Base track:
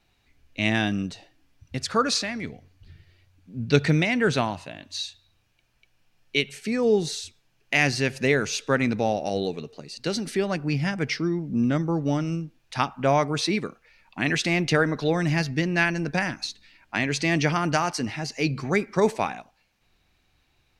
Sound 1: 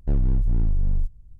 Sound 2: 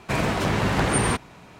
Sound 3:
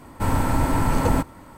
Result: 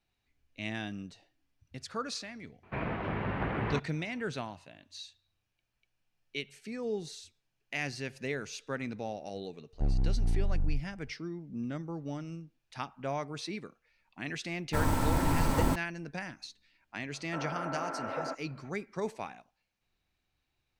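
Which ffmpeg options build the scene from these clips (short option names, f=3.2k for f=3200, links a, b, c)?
-filter_complex "[3:a]asplit=2[a][b];[0:a]volume=-14dB[c];[2:a]lowpass=f=2.6k:w=0.5412,lowpass=f=2.6k:w=1.3066[d];[1:a]equalizer=f=750:t=o:w=0.24:g=10.5[e];[a]acrusher=bits=4:mix=0:aa=0.5[f];[b]highpass=f=350:w=0.5412,highpass=f=350:w=1.3066,equalizer=f=400:t=q:w=4:g=-5,equalizer=f=650:t=q:w=4:g=7,equalizer=f=950:t=q:w=4:g=-9,equalizer=f=1.4k:t=q:w=4:g=7,equalizer=f=1.9k:t=q:w=4:g=-5,lowpass=f=2.1k:w=0.5412,lowpass=f=2.1k:w=1.3066[g];[d]atrim=end=1.59,asetpts=PTS-STARTPTS,volume=-11dB,afade=t=in:d=0.004:c=hsin,afade=t=out:st=1.586:d=0.004:c=hsin,adelay=2630[h];[e]atrim=end=1.39,asetpts=PTS-STARTPTS,volume=-7.5dB,afade=t=in:d=0.004:c=hsin,afade=t=out:st=1.386:d=0.004:c=hsin,adelay=9730[i];[f]atrim=end=1.57,asetpts=PTS-STARTPTS,volume=-7.5dB,afade=t=in:d=0.004:c=hsin,afade=t=out:st=1.566:d=0.004:c=hsin,adelay=14530[j];[g]atrim=end=1.57,asetpts=PTS-STARTPTS,volume=-11dB,afade=t=in:d=0.004:c=hsin,afade=t=out:st=1.566:d=0.004:c=hsin,adelay=17120[k];[c][h][i][j][k]amix=inputs=5:normalize=0"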